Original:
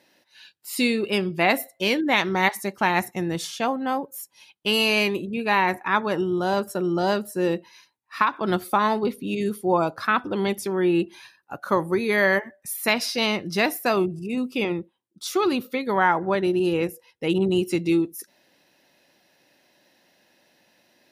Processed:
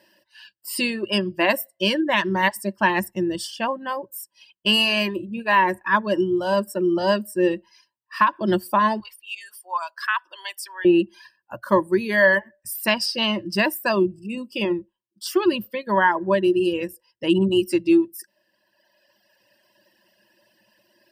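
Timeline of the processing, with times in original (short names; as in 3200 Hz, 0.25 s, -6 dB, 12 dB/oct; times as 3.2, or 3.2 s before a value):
9–10.85 HPF 1000 Hz 24 dB/oct
whole clip: reverb removal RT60 1.8 s; ripple EQ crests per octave 1.3, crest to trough 13 dB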